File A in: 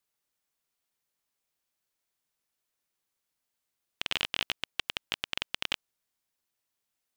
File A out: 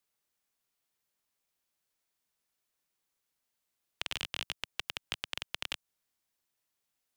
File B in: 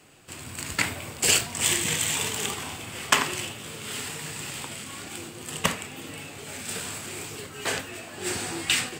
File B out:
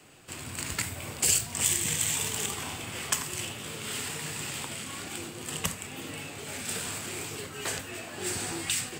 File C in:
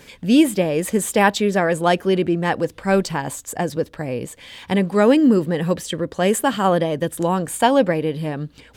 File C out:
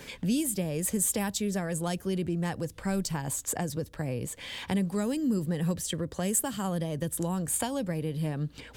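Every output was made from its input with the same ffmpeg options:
-filter_complex "[0:a]acrossover=split=150|5600[s0][s1][s2];[s1]acompressor=threshold=0.0224:ratio=6[s3];[s0][s3][s2]amix=inputs=3:normalize=0"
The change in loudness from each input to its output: -5.0 LU, -3.0 LU, -11.0 LU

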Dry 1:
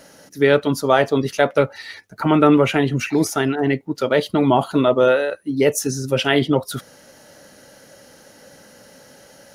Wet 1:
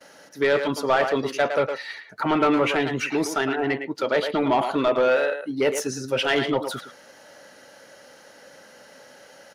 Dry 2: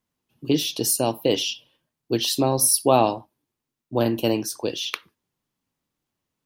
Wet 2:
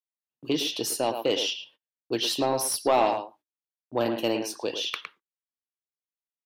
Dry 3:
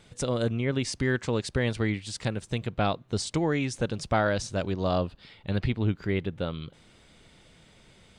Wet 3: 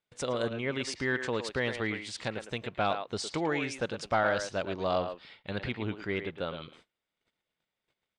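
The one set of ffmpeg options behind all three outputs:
-filter_complex "[0:a]asplit=2[s0][s1];[s1]adelay=110,highpass=300,lowpass=3400,asoftclip=type=hard:threshold=0.282,volume=0.398[s2];[s0][s2]amix=inputs=2:normalize=0,agate=range=0.0355:threshold=0.00282:ratio=16:detection=peak,asplit=2[s3][s4];[s4]highpass=f=720:p=1,volume=6.31,asoftclip=type=tanh:threshold=0.891[s5];[s3][s5]amix=inputs=2:normalize=0,lowpass=f=3200:p=1,volume=0.501,volume=0.355"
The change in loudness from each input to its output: -5.0 LU, -5.0 LU, -3.5 LU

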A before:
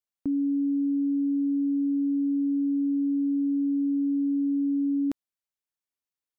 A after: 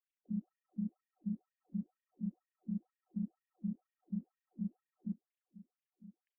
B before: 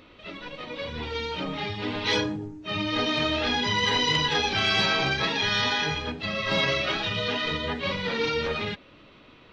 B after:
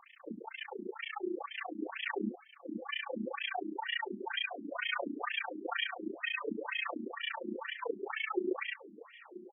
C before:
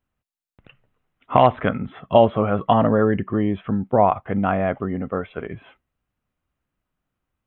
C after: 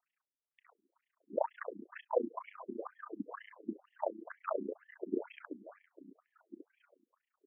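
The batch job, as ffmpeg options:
-filter_complex "[0:a]lowshelf=f=340:g=6,acompressor=threshold=0.0501:ratio=10,tremolo=f=29:d=1,afreqshift=-100,asplit=2[s0][s1];[s1]adelay=1155,lowpass=f=2100:p=1,volume=0.15,asplit=2[s2][s3];[s3]adelay=1155,lowpass=f=2100:p=1,volume=0.17[s4];[s2][s4]amix=inputs=2:normalize=0[s5];[s0][s5]amix=inputs=2:normalize=0,afftfilt=real='re*between(b*sr/1024,260*pow(2500/260,0.5+0.5*sin(2*PI*2.1*pts/sr))/1.41,260*pow(2500/260,0.5+0.5*sin(2*PI*2.1*pts/sr))*1.41)':imag='im*between(b*sr/1024,260*pow(2500/260,0.5+0.5*sin(2*PI*2.1*pts/sr))/1.41,260*pow(2500/260,0.5+0.5*sin(2*PI*2.1*pts/sr))*1.41)':win_size=1024:overlap=0.75,volume=1.78"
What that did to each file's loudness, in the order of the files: -18.0 LU, -12.5 LU, -21.0 LU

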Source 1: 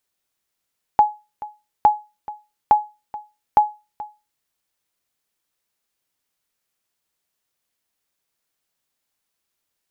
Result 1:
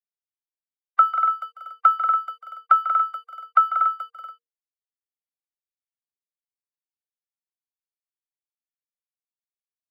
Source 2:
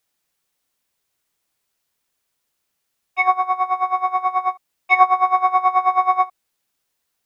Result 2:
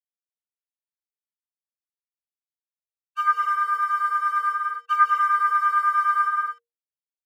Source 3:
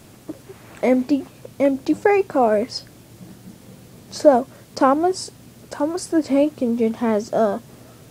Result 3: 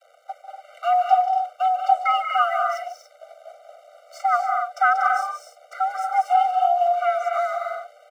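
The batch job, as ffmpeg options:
-filter_complex "[0:a]aemphasis=mode=reproduction:type=75fm,acrossover=split=150|3000[s0][s1][s2];[s0]acompressor=threshold=0.00141:ratio=1.5[s3];[s3][s1][s2]amix=inputs=3:normalize=0,asplit=2[s4][s5];[s5]alimiter=limit=0.355:level=0:latency=1:release=143,volume=0.841[s6];[s4][s6]amix=inputs=2:normalize=0,aeval=exprs='sgn(val(0))*max(abs(val(0))-0.00944,0)':c=same,afreqshift=470,asplit=2[s7][s8];[s8]aecho=0:1:145.8|186.6|239.1|285.7:0.251|0.447|0.447|0.316[s9];[s7][s9]amix=inputs=2:normalize=0,afftfilt=real='re*eq(mod(floor(b*sr/1024/390),2),1)':imag='im*eq(mod(floor(b*sr/1024/390),2),1)':win_size=1024:overlap=0.75,volume=0.631"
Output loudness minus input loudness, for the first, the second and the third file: +1.0 LU, -3.0 LU, -1.5 LU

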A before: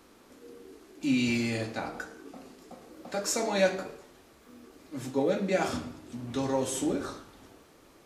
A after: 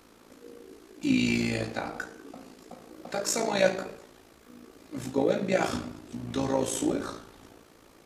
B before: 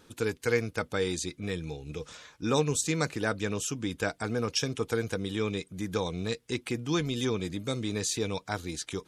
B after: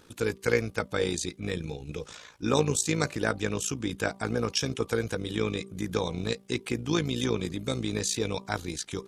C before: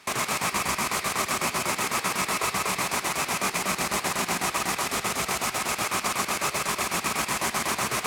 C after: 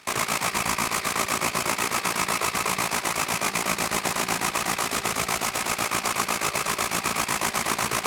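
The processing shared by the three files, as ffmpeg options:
-af "bandreject=f=194.9:t=h:w=4,bandreject=f=389.8:t=h:w=4,bandreject=f=584.7:t=h:w=4,bandreject=f=779.6:t=h:w=4,bandreject=f=974.5:t=h:w=4,bandreject=f=1169.4:t=h:w=4,tremolo=f=56:d=0.667,volume=1.68"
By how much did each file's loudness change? +1.5 LU, +1.5 LU, +1.5 LU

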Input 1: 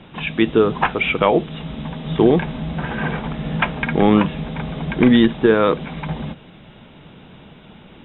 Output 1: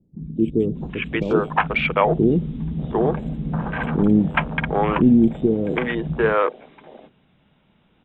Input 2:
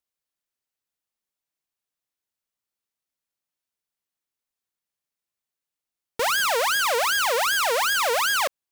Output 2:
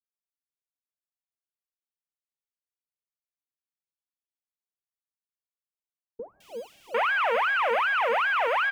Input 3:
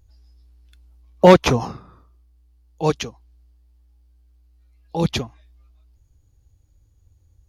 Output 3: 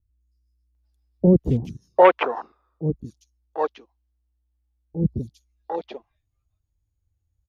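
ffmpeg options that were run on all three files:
-filter_complex "[0:a]afwtdn=0.0562,acrossover=split=400|5100[s0][s1][s2];[s2]adelay=210[s3];[s1]adelay=750[s4];[s0][s4][s3]amix=inputs=3:normalize=0,acrossover=split=4200[s5][s6];[s6]acompressor=threshold=0.00126:ratio=4:attack=1:release=60[s7];[s5][s7]amix=inputs=2:normalize=0"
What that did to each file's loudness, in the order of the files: -2.0 LU, -3.0 LU, -3.5 LU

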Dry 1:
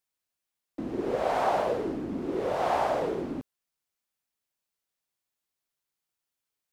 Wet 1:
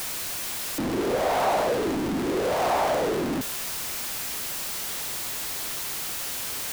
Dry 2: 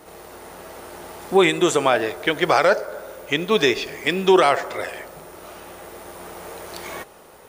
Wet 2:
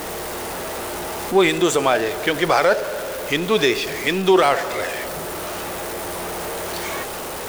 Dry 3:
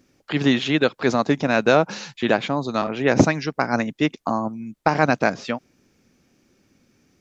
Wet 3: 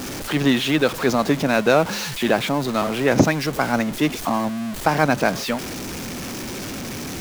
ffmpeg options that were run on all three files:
-af "aeval=exprs='val(0)+0.5*0.0668*sgn(val(0))':c=same,volume=0.891"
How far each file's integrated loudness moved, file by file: +2.5 LU, -1.5 LU, 0.0 LU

